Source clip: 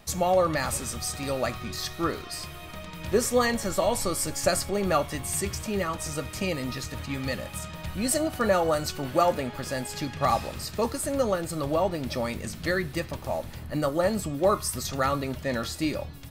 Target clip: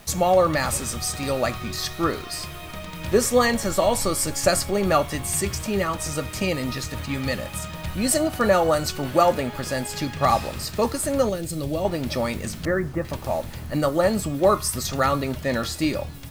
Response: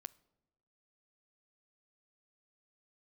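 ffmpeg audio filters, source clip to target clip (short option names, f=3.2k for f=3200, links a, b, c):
-filter_complex "[0:a]asettb=1/sr,asplit=3[a][b][c];[a]atrim=end=11.294[d];[b]atrim=start=11.29:end=11.85,asetpts=PTS-STARTPTS,afade=t=in:d=0.004:c=qsin,afade=t=out:st=0.556:d=0.004:c=qsin,equalizer=f=1.1k:w=0.82:g=-14.5[e];[c]atrim=start=11.846[f];[d][e]acrossfade=d=0.004:c1=hsin:c2=qsin[g];[g][f]acrossfade=d=0.004:c1=qsin:c2=hsin,asettb=1/sr,asplit=3[h][i][j];[h]atrim=end=12.654[k];[i]atrim=start=12.65:end=13.05,asetpts=PTS-STARTPTS,afade=t=in:d=0.004:c=qsin,afade=t=out:st=0.396:d=0.004:c=qsin,lowpass=f=1.6k:w=0.5412,lowpass=f=1.6k:w=1.3066[l];[j]atrim=start=13.046[m];[k][l]acrossfade=d=0.004:c1=hsin:c2=qsin[n];[n][m]acrossfade=d=0.004:c1=qsin:c2=hsin,acrusher=bits=8:mix=0:aa=0.000001,volume=4.5dB"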